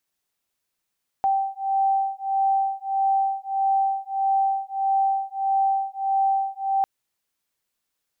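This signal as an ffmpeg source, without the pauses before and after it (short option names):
-f lavfi -i "aevalsrc='0.0708*(sin(2*PI*779*t)+sin(2*PI*780.6*t))':d=5.6:s=44100"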